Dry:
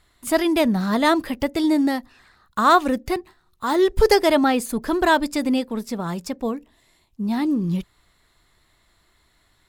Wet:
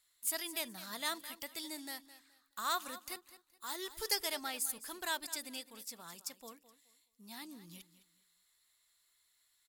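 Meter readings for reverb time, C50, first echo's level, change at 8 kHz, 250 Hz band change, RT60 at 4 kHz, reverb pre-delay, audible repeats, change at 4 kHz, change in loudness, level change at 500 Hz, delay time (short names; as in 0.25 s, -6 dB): none, none, -15.0 dB, -4.0 dB, -31.0 dB, none, none, 2, -10.0 dB, -18.5 dB, -27.0 dB, 0.211 s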